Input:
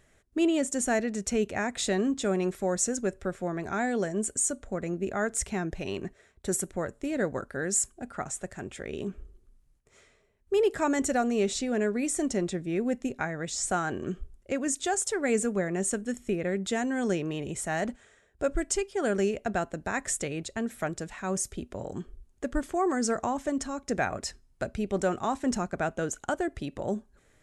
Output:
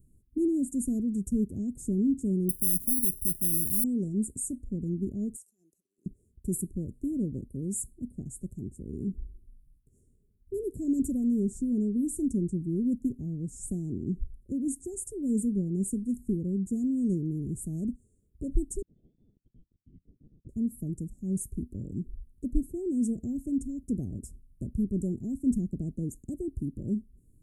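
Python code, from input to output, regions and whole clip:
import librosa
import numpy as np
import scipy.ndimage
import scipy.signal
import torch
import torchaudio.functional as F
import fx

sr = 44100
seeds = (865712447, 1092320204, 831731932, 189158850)

y = fx.chain(x, sr, fx.spacing_loss(db_at_10k=36),
    fx.clip_hard(threshold_db=-32.5),
    fx.resample_bad(factor=8, down='none', up='zero_stuff'), at=(2.49, 3.84))
y = fx.chain(y, sr, fx.highpass_res(hz=2600.0, q=13.0),
    fx.high_shelf(hz=3700.0, db=-11.0),
    fx.over_compress(threshold_db=-40.0, ratio=-1.0), at=(5.36, 6.06))
y = fx.chain(y, sr, fx.highpass(hz=500.0, slope=24),
    fx.freq_invert(carrier_hz=3900), at=(18.82, 20.49))
y = scipy.signal.sosfilt(scipy.signal.cheby2(4, 70, [1000.0, 3500.0], 'bandstop', fs=sr, output='sos'), y)
y = fx.low_shelf(y, sr, hz=180.0, db=4.0)
y = y * 10.0 ** (2.5 / 20.0)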